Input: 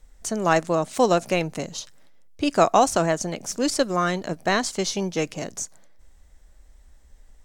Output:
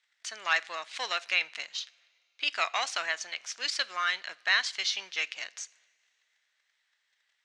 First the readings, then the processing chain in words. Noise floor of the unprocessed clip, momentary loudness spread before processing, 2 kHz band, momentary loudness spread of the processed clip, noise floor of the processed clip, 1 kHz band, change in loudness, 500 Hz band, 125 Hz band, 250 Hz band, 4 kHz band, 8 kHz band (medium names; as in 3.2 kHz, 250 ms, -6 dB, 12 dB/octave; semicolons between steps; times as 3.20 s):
-53 dBFS, 13 LU, +1.5 dB, 12 LU, -77 dBFS, -12.0 dB, -7.0 dB, -22.0 dB, under -40 dB, -35.0 dB, +1.5 dB, -9.5 dB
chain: waveshaping leveller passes 1; Butterworth band-pass 2.7 kHz, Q 1; two-slope reverb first 0.44 s, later 2.7 s, from -18 dB, DRR 18.5 dB